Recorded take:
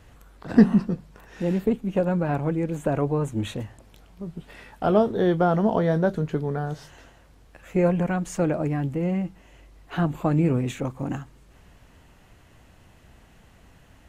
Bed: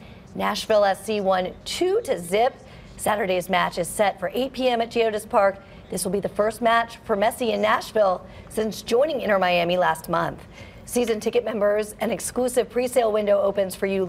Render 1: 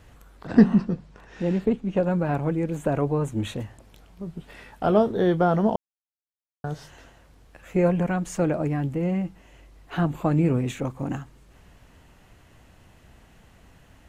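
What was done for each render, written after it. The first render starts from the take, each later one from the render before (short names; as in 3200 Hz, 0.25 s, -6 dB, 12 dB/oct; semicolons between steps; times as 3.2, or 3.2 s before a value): 0.47–2.05 LPF 6700 Hz; 5.76–6.64 mute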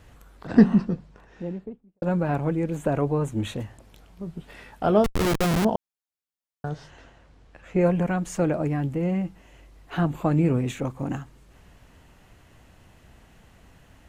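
0.82–2.02 studio fade out; 5.04–5.65 Schmitt trigger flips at -21.5 dBFS; 6.69–7.81 air absorption 74 m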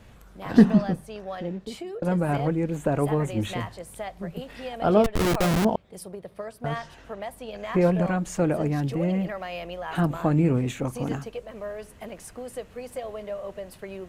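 add bed -14.5 dB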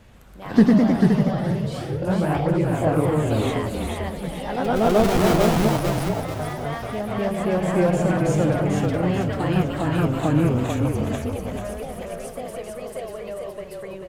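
frequency-shifting echo 0.44 s, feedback 40%, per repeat -34 Hz, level -3.5 dB; echoes that change speed 0.135 s, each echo +1 st, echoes 3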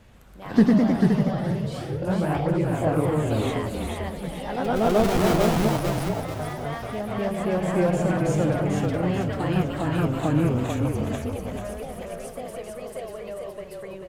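gain -2.5 dB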